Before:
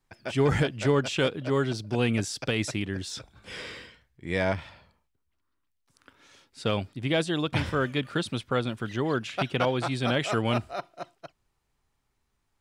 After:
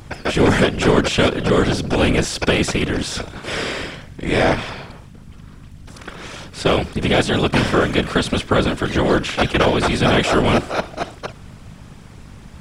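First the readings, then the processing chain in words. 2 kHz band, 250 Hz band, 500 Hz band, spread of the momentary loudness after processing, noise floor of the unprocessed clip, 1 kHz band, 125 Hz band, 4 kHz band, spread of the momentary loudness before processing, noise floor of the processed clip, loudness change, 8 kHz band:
+11.0 dB, +10.5 dB, +10.0 dB, 15 LU, −76 dBFS, +11.5 dB, +8.0 dB, +11.0 dB, 14 LU, −40 dBFS, +10.0 dB, +11.0 dB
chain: compressor on every frequency bin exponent 0.6
hum with harmonics 50 Hz, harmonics 3, −46 dBFS
random phases in short frames
level +7 dB

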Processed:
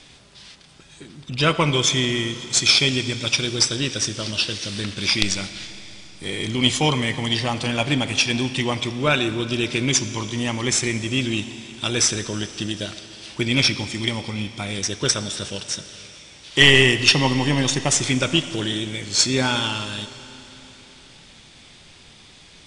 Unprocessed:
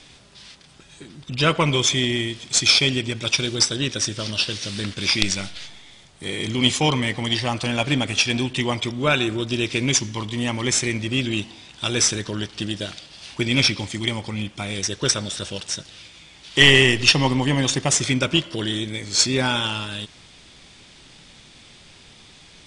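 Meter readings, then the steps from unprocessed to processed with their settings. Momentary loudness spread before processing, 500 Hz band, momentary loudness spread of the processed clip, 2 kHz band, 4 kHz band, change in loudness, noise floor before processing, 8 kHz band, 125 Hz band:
13 LU, 0.0 dB, 14 LU, +0.5 dB, 0.0 dB, 0.0 dB, −48 dBFS, 0.0 dB, 0.0 dB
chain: four-comb reverb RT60 3.8 s, combs from 27 ms, DRR 12.5 dB

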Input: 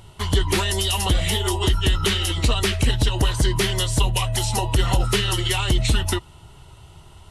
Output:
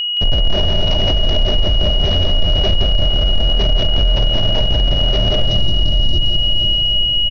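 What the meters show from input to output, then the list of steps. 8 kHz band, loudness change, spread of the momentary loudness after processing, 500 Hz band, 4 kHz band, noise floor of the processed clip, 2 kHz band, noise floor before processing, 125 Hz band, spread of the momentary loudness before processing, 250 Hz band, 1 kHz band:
below −15 dB, +6.0 dB, 3 LU, +4.5 dB, +11.5 dB, −16 dBFS, −5.5 dB, −46 dBFS, +3.0 dB, 2 LU, +1.5 dB, −2.5 dB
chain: comparator with hysteresis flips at −18.5 dBFS
notch filter 610 Hz, Q 12
wave folding −28 dBFS
healed spectral selection 0:05.40–0:06.40, 380–3,600 Hz both
Butterworth low-pass 6,100 Hz 96 dB per octave
parametric band 1,200 Hz −6 dB 1.5 octaves
on a send: feedback delay with all-pass diffusion 505 ms, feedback 55%, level −10 dB
on the sum: steady tone 2,900 Hz −38 dBFS
low-shelf EQ 120 Hz +5.5 dB
multi-tap delay 170/767 ms −6/−18 dB
boost into a limiter +26 dB
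level −5 dB

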